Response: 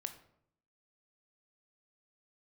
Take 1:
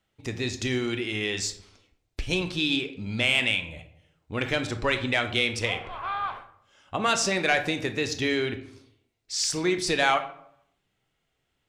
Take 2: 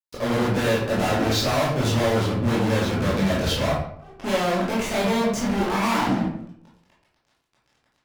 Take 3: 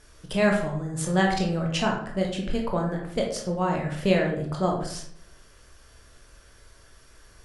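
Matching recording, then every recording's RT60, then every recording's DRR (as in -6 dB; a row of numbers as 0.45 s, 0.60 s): 1; 0.70 s, 0.70 s, 0.70 s; 7.5 dB, -6.5 dB, 0.0 dB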